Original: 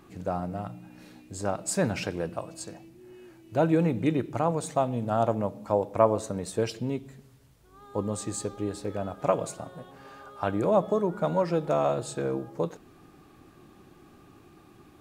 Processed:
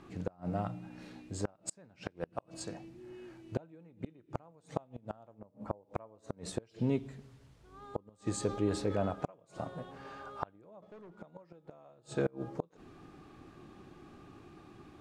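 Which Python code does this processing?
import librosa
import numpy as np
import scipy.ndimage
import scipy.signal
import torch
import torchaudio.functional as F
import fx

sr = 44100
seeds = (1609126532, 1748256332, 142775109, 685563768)

y = fx.peak_eq(x, sr, hz=5300.0, db=-14.5, octaves=2.5, at=(5.38, 5.83), fade=0.02)
y = fx.transient(y, sr, attack_db=0, sustain_db=5, at=(8.4, 9.11))
y = fx.leveller(y, sr, passes=3, at=(10.82, 11.22))
y = fx.gate_flip(y, sr, shuts_db=-19.0, range_db=-32)
y = fx.air_absorb(y, sr, metres=61.0)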